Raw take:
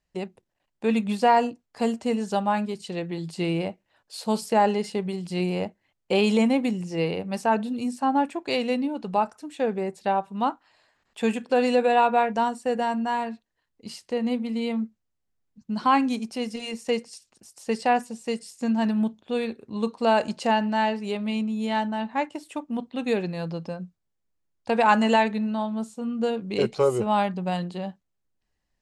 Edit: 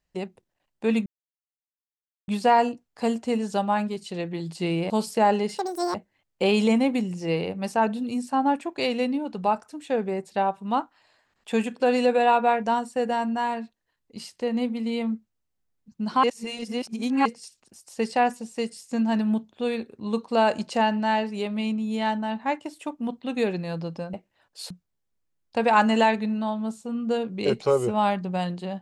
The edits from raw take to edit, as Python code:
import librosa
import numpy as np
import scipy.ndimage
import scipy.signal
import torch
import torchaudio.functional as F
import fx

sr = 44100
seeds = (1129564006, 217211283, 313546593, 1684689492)

y = fx.edit(x, sr, fx.insert_silence(at_s=1.06, length_s=1.22),
    fx.move(start_s=3.68, length_s=0.57, to_s=23.83),
    fx.speed_span(start_s=4.93, length_s=0.71, speed=1.95),
    fx.reverse_span(start_s=15.93, length_s=1.02), tone=tone)